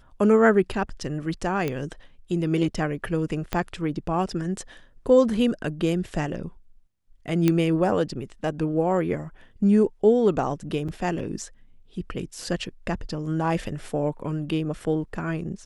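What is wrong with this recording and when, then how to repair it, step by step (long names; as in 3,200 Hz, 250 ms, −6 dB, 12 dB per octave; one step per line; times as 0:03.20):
0:01.68: click −14 dBFS
0:03.53: click −11 dBFS
0:07.48: click −8 dBFS
0:10.88–0:10.89: drop-out 5.8 ms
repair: click removal
repair the gap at 0:10.88, 5.8 ms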